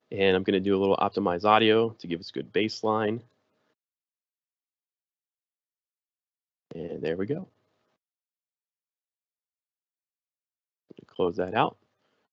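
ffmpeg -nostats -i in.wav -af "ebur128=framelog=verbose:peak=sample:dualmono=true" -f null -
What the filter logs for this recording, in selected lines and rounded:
Integrated loudness:
  I:         -23.2 LUFS
  Threshold: -34.0 LUFS
Loudness range:
  LRA:        14.7 LU
  Threshold: -48.8 LUFS
  LRA low:   -37.2 LUFS
  LRA high:  -22.5 LUFS
Sample peak:
  Peak:       -5.6 dBFS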